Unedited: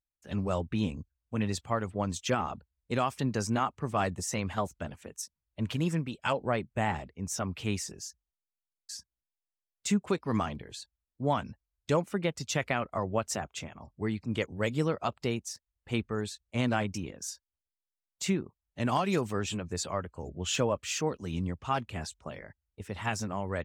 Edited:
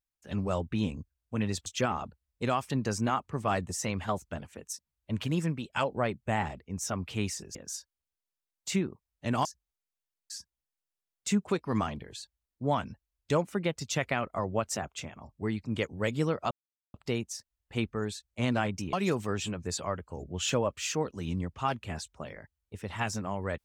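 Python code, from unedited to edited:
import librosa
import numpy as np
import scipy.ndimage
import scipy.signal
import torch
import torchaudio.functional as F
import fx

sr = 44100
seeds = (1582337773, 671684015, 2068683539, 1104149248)

y = fx.edit(x, sr, fx.cut(start_s=1.66, length_s=0.49),
    fx.insert_silence(at_s=15.1, length_s=0.43),
    fx.move(start_s=17.09, length_s=1.9, to_s=8.04), tone=tone)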